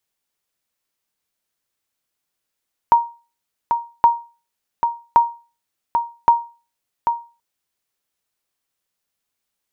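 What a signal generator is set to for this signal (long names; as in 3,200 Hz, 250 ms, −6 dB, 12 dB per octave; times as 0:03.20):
ping with an echo 938 Hz, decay 0.33 s, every 1.12 s, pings 4, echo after 0.79 s, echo −6.5 dB −4 dBFS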